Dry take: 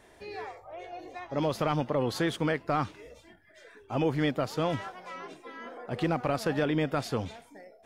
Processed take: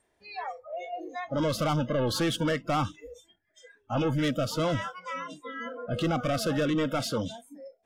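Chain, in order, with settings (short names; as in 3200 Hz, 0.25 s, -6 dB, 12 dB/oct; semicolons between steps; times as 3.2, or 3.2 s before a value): 6.74–7.31 HPF 140 Hz 12 dB/oct; soft clip -31 dBFS, distortion -7 dB; spectral noise reduction 24 dB; gain +8 dB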